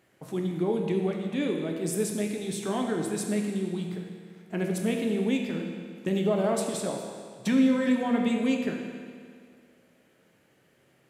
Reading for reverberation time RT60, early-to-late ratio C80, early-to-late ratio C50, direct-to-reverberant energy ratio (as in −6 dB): 2.0 s, 4.5 dB, 3.5 dB, 1.5 dB